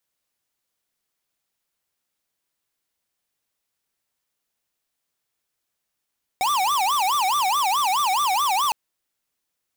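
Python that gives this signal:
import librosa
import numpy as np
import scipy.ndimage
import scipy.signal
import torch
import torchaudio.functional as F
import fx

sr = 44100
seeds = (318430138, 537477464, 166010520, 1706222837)

y = fx.siren(sr, length_s=2.31, kind='wail', low_hz=740.0, high_hz=1190.0, per_s=4.7, wave='square', level_db=-21.0)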